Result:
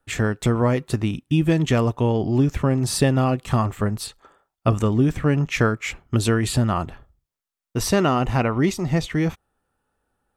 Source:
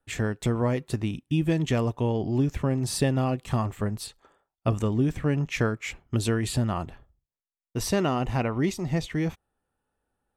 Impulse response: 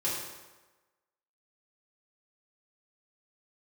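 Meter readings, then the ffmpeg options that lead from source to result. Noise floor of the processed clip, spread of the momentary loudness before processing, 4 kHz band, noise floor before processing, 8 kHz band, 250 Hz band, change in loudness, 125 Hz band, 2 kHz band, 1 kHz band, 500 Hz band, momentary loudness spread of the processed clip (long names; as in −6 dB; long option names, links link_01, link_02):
below −85 dBFS, 7 LU, +5.5 dB, below −85 dBFS, +5.5 dB, +5.5 dB, +5.5 dB, +5.5 dB, +6.5 dB, +7.0 dB, +5.5 dB, 7 LU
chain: -af "equalizer=frequency=1300:width=3.1:gain=4,volume=5.5dB"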